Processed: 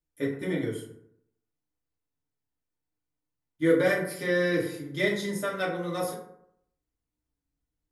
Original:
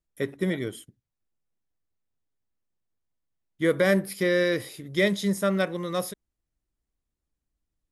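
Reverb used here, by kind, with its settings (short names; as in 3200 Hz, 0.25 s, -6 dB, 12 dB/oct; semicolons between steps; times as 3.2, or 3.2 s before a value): FDN reverb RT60 0.72 s, low-frequency decay 1×, high-frequency decay 0.45×, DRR -5.5 dB; gain -8 dB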